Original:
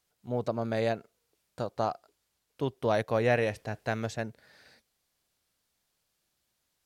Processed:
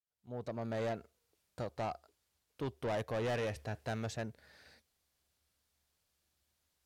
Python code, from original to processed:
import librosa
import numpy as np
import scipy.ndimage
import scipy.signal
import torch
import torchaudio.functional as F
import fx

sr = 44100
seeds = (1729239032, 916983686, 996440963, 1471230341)

y = fx.fade_in_head(x, sr, length_s=0.86)
y = fx.peak_eq(y, sr, hz=72.0, db=15.0, octaves=0.3)
y = 10.0 ** (-29.0 / 20.0) * np.tanh(y / 10.0 ** (-29.0 / 20.0))
y = F.gain(torch.from_numpy(y), -3.0).numpy()